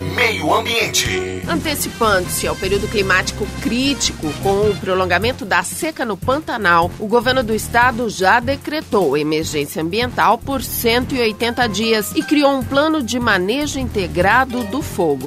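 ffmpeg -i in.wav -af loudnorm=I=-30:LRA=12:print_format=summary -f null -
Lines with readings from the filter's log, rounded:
Input Integrated:    -16.9 LUFS
Input True Peak:      -1.7 dBTP
Input LRA:             0.9 LU
Input Threshold:     -26.9 LUFS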